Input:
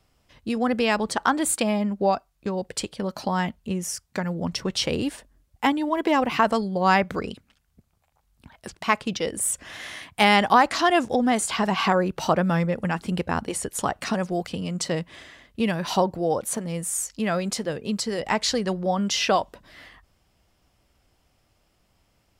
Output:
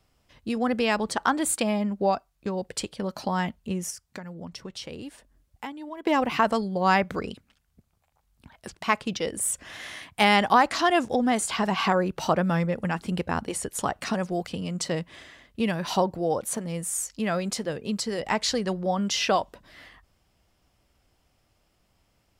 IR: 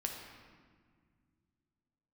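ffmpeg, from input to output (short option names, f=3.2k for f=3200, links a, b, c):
-filter_complex "[0:a]asettb=1/sr,asplit=3[a][b][c];[a]atrim=end=3.904[d];[b]atrim=start=3.9:end=6.07,asetpts=PTS-STARTPTS,afade=t=in:d=0.004:c=qsin,afade=t=out:st=2.166:d=0.004:c=qsin,acompressor=threshold=-37dB:ratio=3[e];[c]atrim=start=6.066[f];[d][e]acrossfade=d=0.004:c1=hsin:c2=qsin[g];[g][f]acrossfade=d=0.004:c1=qsin:c2=hsin,volume=-2dB"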